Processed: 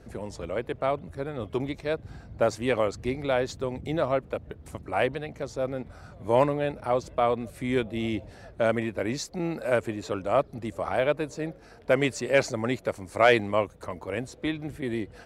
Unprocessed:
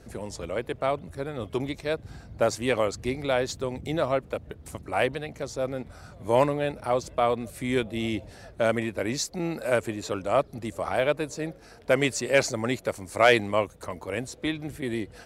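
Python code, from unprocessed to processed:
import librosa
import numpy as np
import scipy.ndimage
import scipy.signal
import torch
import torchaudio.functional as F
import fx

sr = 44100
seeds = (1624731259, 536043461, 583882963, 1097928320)

y = fx.high_shelf(x, sr, hz=4100.0, db=-8.5)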